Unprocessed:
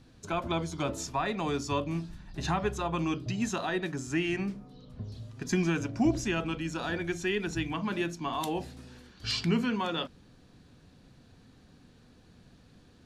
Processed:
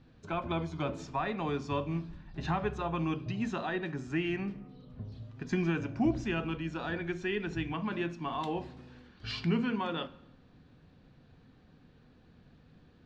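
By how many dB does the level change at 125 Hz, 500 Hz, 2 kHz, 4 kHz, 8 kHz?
-1.5 dB, -2.5 dB, -3.0 dB, -6.5 dB, under -15 dB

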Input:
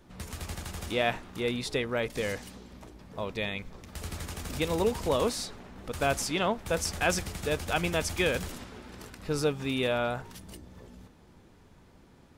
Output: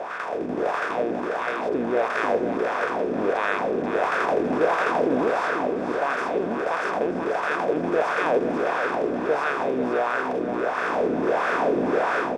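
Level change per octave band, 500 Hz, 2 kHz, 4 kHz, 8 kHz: +9.0 dB, +8.5 dB, -5.0 dB, under -10 dB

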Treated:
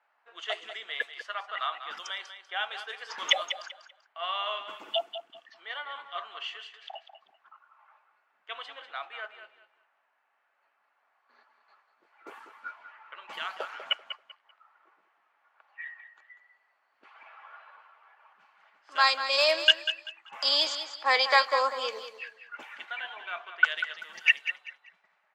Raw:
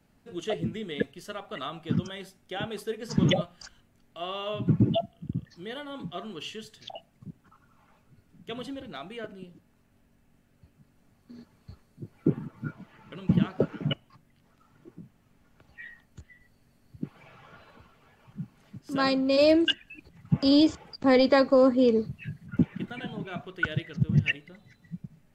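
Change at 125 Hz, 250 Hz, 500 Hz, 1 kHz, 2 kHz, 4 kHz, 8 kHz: under -40 dB, -32.0 dB, -8.5 dB, +4.5 dB, +7.0 dB, +6.5 dB, n/a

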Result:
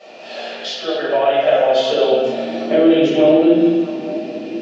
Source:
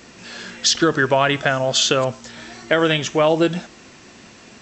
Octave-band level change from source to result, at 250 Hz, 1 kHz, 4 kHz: +8.0, +1.0, -4.0 dB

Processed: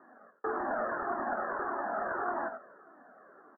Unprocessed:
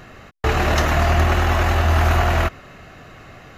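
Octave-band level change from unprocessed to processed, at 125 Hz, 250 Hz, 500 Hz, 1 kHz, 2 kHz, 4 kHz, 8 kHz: under -40 dB, -15.5 dB, -11.5 dB, -11.0 dB, -15.0 dB, under -40 dB, under -40 dB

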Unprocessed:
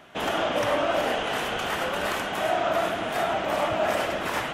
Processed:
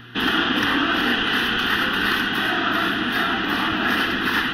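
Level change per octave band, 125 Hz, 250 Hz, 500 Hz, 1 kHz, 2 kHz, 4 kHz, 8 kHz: +5.5, +10.5, -5.5, +2.5, +10.5, +10.5, -2.5 dB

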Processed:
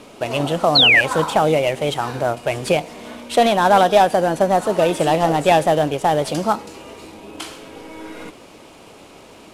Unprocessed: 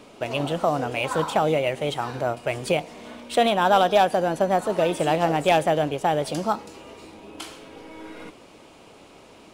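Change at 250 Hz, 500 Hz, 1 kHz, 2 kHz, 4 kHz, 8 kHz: +5.0, +5.0, +5.0, +10.0, +11.5, +6.5 dB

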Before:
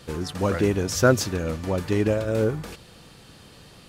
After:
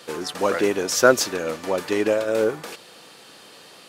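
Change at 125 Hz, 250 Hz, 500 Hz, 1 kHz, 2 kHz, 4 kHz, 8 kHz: -14.0, -2.0, +3.5, +5.0, +5.0, +5.0, +5.0 dB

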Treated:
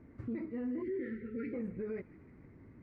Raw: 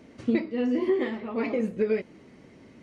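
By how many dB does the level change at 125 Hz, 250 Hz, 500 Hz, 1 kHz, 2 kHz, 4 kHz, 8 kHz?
-5.5 dB, -11.0 dB, -14.0 dB, -18.5 dB, -14.5 dB, under -25 dB, n/a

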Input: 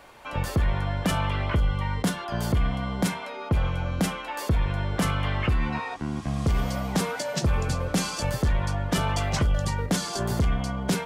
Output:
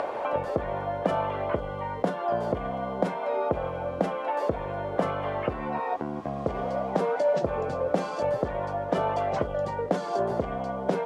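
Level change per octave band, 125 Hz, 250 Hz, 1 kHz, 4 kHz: -11.0, -4.5, +3.0, -13.0 dB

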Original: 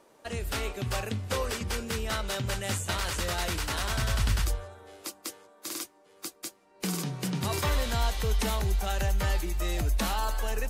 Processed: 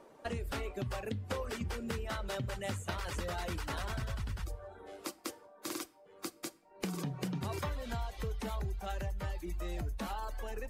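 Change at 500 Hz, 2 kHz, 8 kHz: -6.0, -9.0, -12.5 dB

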